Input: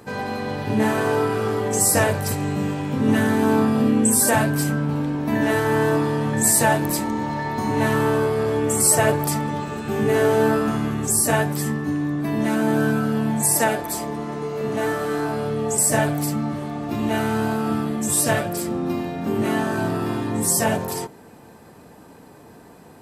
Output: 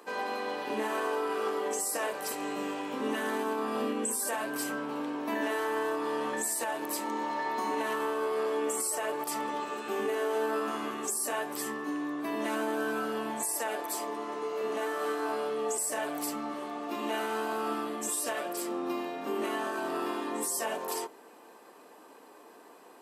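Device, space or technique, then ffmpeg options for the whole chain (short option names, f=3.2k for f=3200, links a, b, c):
laptop speaker: -af "highpass=f=310:w=0.5412,highpass=f=310:w=1.3066,equalizer=f=1.1k:t=o:w=0.25:g=7,equalizer=f=2.9k:t=o:w=0.34:g=4,alimiter=limit=-16.5dB:level=0:latency=1:release=173,volume=-6dB"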